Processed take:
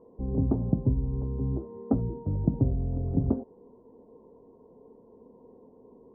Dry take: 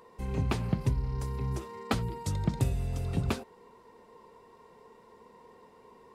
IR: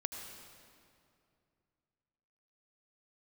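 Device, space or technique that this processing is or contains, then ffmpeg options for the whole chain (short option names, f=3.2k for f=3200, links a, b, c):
under water: -af "lowpass=f=680:w=0.5412,lowpass=f=680:w=1.3066,equalizer=f=270:t=o:w=0.36:g=9.5,volume=2.5dB"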